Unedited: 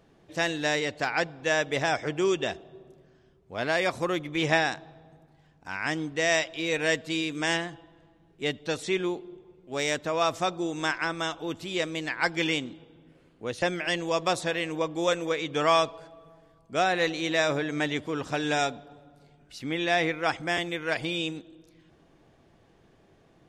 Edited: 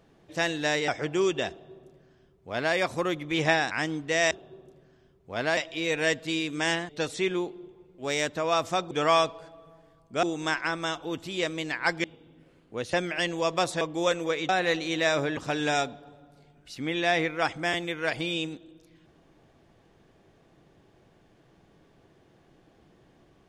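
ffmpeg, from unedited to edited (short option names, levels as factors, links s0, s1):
-filter_complex "[0:a]asplit=12[s0][s1][s2][s3][s4][s5][s6][s7][s8][s9][s10][s11];[s0]atrim=end=0.882[s12];[s1]atrim=start=1.918:end=4.752[s13];[s2]atrim=start=5.788:end=6.392[s14];[s3]atrim=start=2.528:end=3.792[s15];[s4]atrim=start=6.388:end=7.712[s16];[s5]atrim=start=8.578:end=10.602[s17];[s6]atrim=start=15.498:end=16.822[s18];[s7]atrim=start=10.598:end=12.412[s19];[s8]atrim=start=12.728:end=14.502[s20];[s9]atrim=start=14.818:end=15.502[s21];[s10]atrim=start=16.818:end=17.702[s22];[s11]atrim=start=18.208[s23];[s12][s13]acrossfade=d=0.004:c1=hsin:c2=hsin[s24];[s24][s14]acrossfade=d=0.004:c1=hsin:c2=hsin[s25];[s25][s15]acrossfade=d=0.004:c1=hsin:c2=hsin[s26];[s26][s16]acrossfade=d=0.004:c1=hsin:c2=hsin[s27];[s27][s17]acrossfade=d=0.004:c1=hsin:c2=hsin[s28];[s28][s18]acrossfade=d=0.004:c1=hsin:c2=hsin[s29];[s29][s19]acrossfade=d=0.004:c1=hsin:c2=hsin[s30];[s30][s20]acrossfade=d=0.004:c1=hsin:c2=hsin[s31];[s31][s21]acrossfade=d=0.004:c1=hsin:c2=hsin[s32];[s32][s22]acrossfade=d=0.004:c1=hsin:c2=hsin[s33];[s33][s23]acrossfade=d=0.004:c1=hsin:c2=hsin"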